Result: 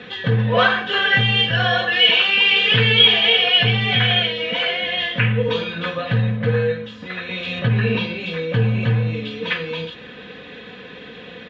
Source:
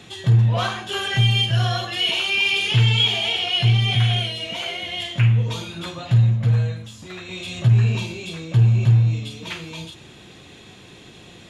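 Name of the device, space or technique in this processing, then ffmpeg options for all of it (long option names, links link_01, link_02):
guitar cabinet: -filter_complex "[0:a]asettb=1/sr,asplit=3[link_01][link_02][link_03];[link_01]atrim=end=7.594[link_04];[link_02]atrim=start=7.59:end=8.2,asetpts=PTS-STARTPTS,afade=type=in:duration=0.004:curve=qsin,afade=type=out:start_time=0.606:duration=0.004:curve=qsin,lowpass=frequency=5500:width=0.5412,lowpass=frequency=5500:width=1.3066[link_05];[link_03]atrim=start=8.196[link_06];[link_04][link_05]acrossfade=duration=0.004:curve1=hsin:curve2=qsin[link_07];[link_07][link_06]acrossfade=duration=0.004:curve1=qsin:curve2=hsin,highpass=78,equalizer=frequency=85:width_type=q:width=4:gain=-9,equalizer=frequency=320:width_type=q:width=4:gain=-7,equalizer=frequency=470:width_type=q:width=4:gain=9,equalizer=frequency=760:width_type=q:width=4:gain=-5,equalizer=frequency=1700:width_type=q:width=4:gain=9,lowpass=frequency=3600:width=0.5412,lowpass=frequency=3600:width=1.3066,aecho=1:1:4:0.63,volume=5.5dB"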